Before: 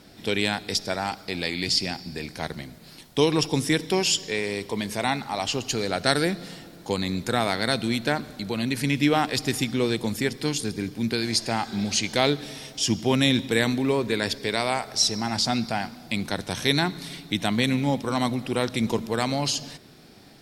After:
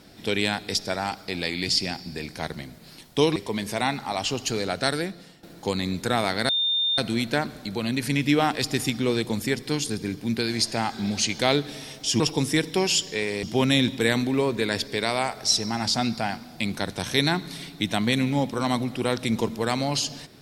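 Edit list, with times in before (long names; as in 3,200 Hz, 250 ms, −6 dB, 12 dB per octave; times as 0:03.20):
0:03.36–0:04.59: move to 0:12.94
0:05.81–0:06.66: fade out, to −14 dB
0:07.72: insert tone 3,620 Hz −20.5 dBFS 0.49 s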